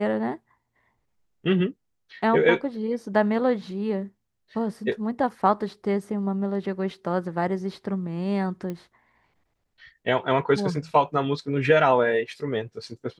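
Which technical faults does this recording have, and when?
8.70 s: pop -21 dBFS

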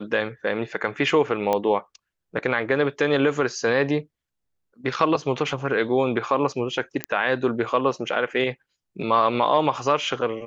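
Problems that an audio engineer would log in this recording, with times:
1.53 s: pop -10 dBFS
7.04 s: pop -9 dBFS

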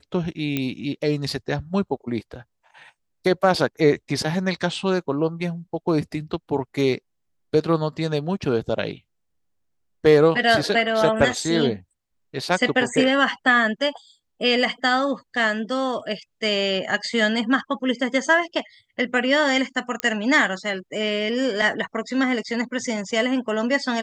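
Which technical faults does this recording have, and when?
0.57 s: pop -10 dBFS
20.00 s: pop -8 dBFS

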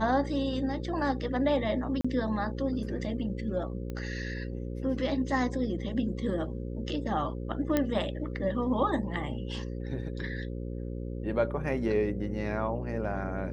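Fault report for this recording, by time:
buzz 60 Hz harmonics 9 -36 dBFS
2.01–2.04 s: dropout 35 ms
3.90 s: pop -25 dBFS
7.77 s: pop -13 dBFS

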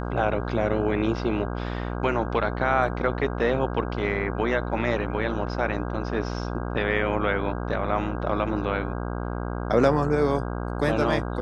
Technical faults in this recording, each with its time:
buzz 60 Hz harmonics 27 -30 dBFS

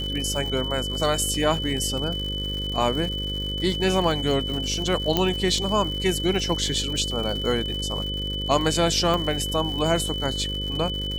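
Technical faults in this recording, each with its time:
buzz 50 Hz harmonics 11 -31 dBFS
crackle 160 per s -30 dBFS
whine 3 kHz -29 dBFS
5.17 s: pop -6 dBFS
9.14 s: pop

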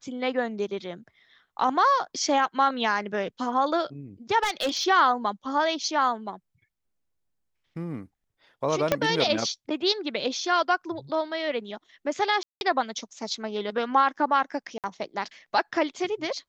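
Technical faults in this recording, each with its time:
4.43–4.84 s: clipped -21 dBFS
8.92 s: pop -7 dBFS
12.43–12.61 s: dropout 181 ms
14.78–14.84 s: dropout 58 ms

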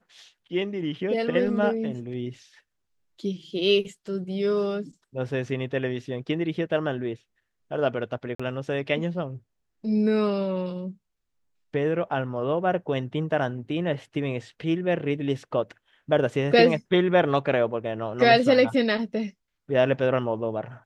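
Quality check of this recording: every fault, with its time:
8.35–8.39 s: dropout 45 ms

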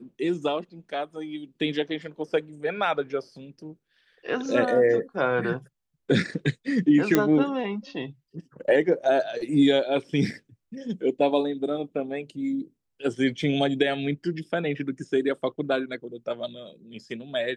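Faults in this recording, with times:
7.15 s: pop -6 dBFS

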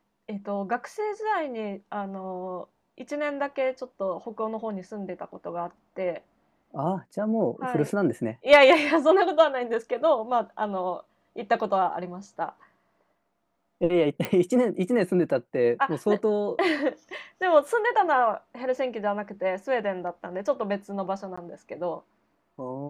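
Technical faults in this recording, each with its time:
14.25 s: pop -13 dBFS
21.36–21.38 s: dropout 15 ms

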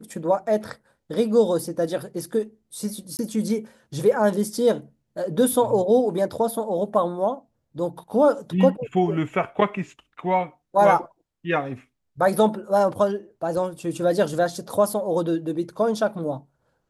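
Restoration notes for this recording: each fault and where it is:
3.17–3.19 s: dropout 19 ms

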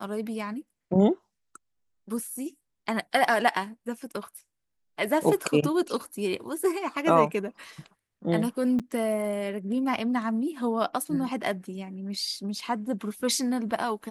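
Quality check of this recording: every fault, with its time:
8.79–8.80 s: dropout 6.8 ms

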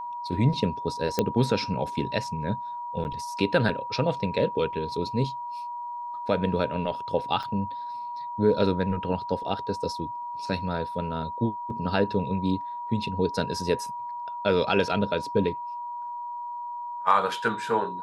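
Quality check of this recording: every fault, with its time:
whine 960 Hz -32 dBFS
1.19 s: pop -9 dBFS
3.04–3.05 s: dropout 9.4 ms
7.43 s: dropout 4.9 ms

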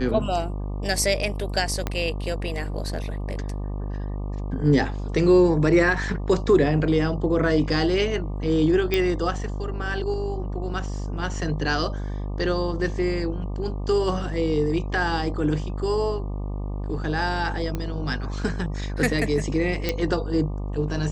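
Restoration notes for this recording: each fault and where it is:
buzz 50 Hz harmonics 24 -29 dBFS
1.87 s: pop -11 dBFS
8.94 s: pop -9 dBFS
17.75 s: pop -15 dBFS
19.89 s: pop -9 dBFS

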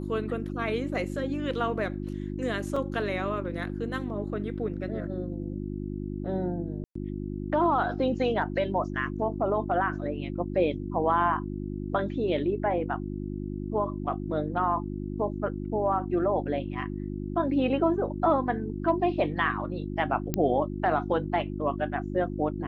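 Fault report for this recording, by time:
hum 50 Hz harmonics 7 -34 dBFS
2.76 s: dropout 3.9 ms
6.84–6.95 s: dropout 114 ms
20.34 s: pop -12 dBFS

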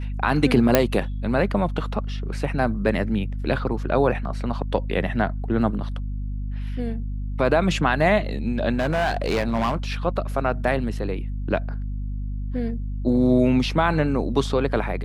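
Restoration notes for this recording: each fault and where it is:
hum 50 Hz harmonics 5 -28 dBFS
0.75 s: pop 0 dBFS
8.74–9.92 s: clipped -17.5 dBFS

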